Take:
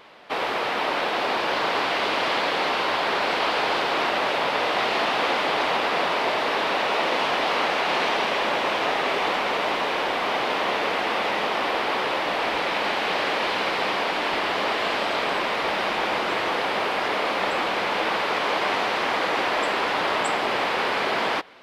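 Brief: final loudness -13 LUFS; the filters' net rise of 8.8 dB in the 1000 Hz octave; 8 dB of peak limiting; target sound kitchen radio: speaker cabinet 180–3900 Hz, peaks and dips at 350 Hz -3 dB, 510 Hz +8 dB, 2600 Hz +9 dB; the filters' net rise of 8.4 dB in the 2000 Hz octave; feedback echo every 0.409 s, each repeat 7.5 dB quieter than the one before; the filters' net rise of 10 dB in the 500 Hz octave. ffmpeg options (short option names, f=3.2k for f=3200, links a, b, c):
-af "equalizer=f=500:t=o:g=4.5,equalizer=f=1k:t=o:g=8,equalizer=f=2k:t=o:g=4,alimiter=limit=-11.5dB:level=0:latency=1,highpass=180,equalizer=f=350:t=q:w=4:g=-3,equalizer=f=510:t=q:w=4:g=8,equalizer=f=2.6k:t=q:w=4:g=9,lowpass=f=3.9k:w=0.5412,lowpass=f=3.9k:w=1.3066,aecho=1:1:409|818|1227|1636|2045:0.422|0.177|0.0744|0.0312|0.0131,volume=4dB"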